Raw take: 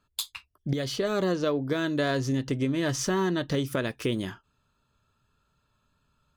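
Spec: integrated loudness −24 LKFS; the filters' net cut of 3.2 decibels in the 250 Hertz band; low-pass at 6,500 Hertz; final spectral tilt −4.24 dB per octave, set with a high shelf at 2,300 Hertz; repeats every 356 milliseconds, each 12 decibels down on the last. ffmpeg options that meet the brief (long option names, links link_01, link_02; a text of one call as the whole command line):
ffmpeg -i in.wav -af "lowpass=6500,equalizer=frequency=250:width_type=o:gain=-4.5,highshelf=frequency=2300:gain=5.5,aecho=1:1:356|712|1068:0.251|0.0628|0.0157,volume=5dB" out.wav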